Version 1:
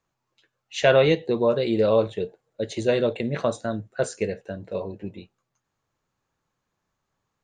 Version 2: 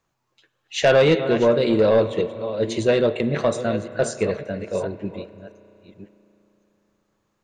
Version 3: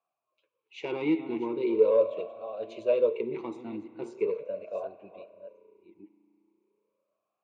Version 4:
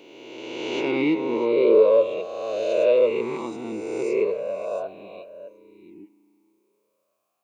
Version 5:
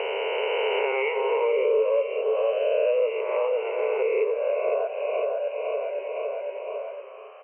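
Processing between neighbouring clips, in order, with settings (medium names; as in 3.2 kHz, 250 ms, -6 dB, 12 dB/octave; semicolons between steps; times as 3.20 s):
chunks repeated in reverse 554 ms, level -12.5 dB; spring tank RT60 3.4 s, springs 34 ms, chirp 35 ms, DRR 14.5 dB; saturation -13 dBFS, distortion -16 dB; trim +4.5 dB
talking filter a-u 0.4 Hz
reverse spectral sustain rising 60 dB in 1.93 s; treble shelf 3.7 kHz +10 dB; trim +2.5 dB
brick-wall FIR band-pass 400–3100 Hz; on a send: feedback delay 510 ms, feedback 36%, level -10 dB; on the sum: three bands compressed up and down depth 100%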